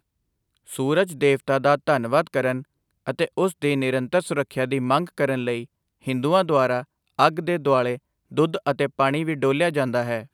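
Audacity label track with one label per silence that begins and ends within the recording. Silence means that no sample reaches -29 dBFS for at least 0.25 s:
2.610000	3.080000	silence
5.630000	6.070000	silence
6.810000	7.190000	silence
7.960000	8.370000	silence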